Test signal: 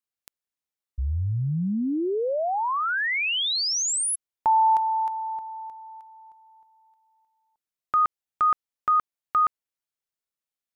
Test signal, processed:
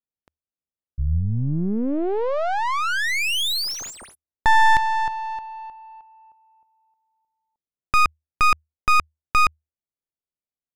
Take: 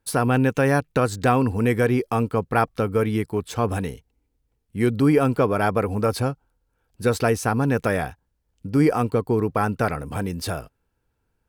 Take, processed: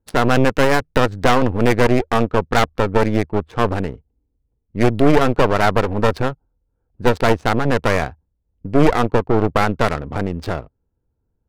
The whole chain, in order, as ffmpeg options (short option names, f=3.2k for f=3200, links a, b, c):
-af "adynamicsmooth=sensitivity=4.5:basefreq=680,aeval=exprs='0.562*(cos(1*acos(clip(val(0)/0.562,-1,1)))-cos(1*PI/2))+0.158*(cos(6*acos(clip(val(0)/0.562,-1,1)))-cos(6*PI/2))':c=same,equalizer=f=78:t=o:w=0.21:g=4,volume=2dB"